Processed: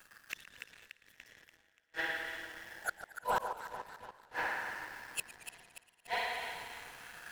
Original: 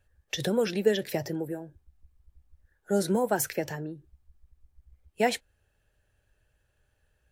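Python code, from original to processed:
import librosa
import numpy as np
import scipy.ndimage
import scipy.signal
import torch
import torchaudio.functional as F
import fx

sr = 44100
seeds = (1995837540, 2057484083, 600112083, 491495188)

y = fx.filter_lfo_highpass(x, sr, shape='sine', hz=0.29, low_hz=740.0, high_hz=1800.0, q=4.0)
y = fx.rev_spring(y, sr, rt60_s=1.9, pass_ms=(48, 58), chirp_ms=65, drr_db=-1.5)
y = fx.over_compress(y, sr, threshold_db=-34.0, ratio=-1.0)
y = fx.highpass(y, sr, hz=290.0, slope=6)
y = fx.high_shelf(y, sr, hz=3000.0, db=10.0)
y = fx.gate_flip(y, sr, shuts_db=-30.0, range_db=-38)
y = fx.echo_alternate(y, sr, ms=145, hz=1200.0, feedback_pct=75, wet_db=-9.0)
y = fx.leveller(y, sr, passes=3)
y = fx.low_shelf(y, sr, hz=420.0, db=10.5)
y = fx.echo_warbled(y, sr, ms=115, feedback_pct=68, rate_hz=2.8, cents=148, wet_db=-17)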